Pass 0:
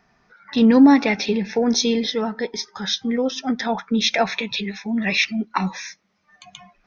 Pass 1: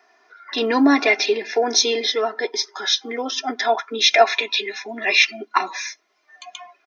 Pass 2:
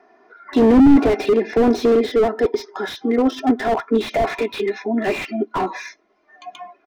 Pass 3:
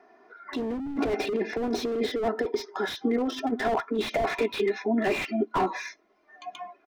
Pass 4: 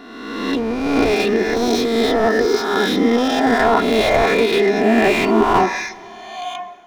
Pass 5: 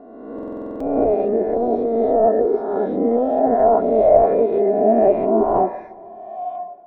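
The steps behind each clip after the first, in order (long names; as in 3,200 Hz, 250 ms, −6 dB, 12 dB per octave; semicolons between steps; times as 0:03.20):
high-pass filter 360 Hz 24 dB per octave; comb filter 2.9 ms, depth 78%; level +2.5 dB
spectral tilt −5.5 dB per octave; slew-rate limiting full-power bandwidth 73 Hz; level +3.5 dB
compressor whose output falls as the input rises −19 dBFS, ratio −1; level −7 dB
peak hold with a rise ahead of every peak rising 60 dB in 1.38 s; dense smooth reverb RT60 2.7 s, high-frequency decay 0.9×, DRR 17 dB; level +8 dB
low-pass with resonance 620 Hz, resonance Q 4.9; buffer that repeats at 0:00.34, samples 2,048, times 9; level −6.5 dB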